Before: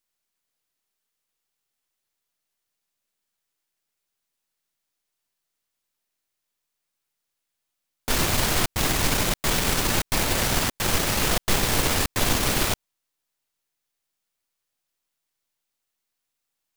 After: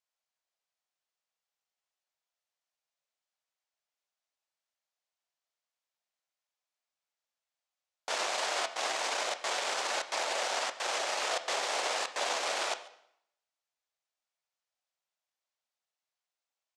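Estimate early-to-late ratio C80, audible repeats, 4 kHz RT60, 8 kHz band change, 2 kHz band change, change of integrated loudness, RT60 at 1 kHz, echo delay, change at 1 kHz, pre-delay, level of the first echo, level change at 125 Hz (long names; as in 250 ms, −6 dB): 15.0 dB, 1, 0.65 s, −11.0 dB, −7.0 dB, −9.5 dB, 0.70 s, 139 ms, −4.5 dB, 6 ms, −22.0 dB, below −40 dB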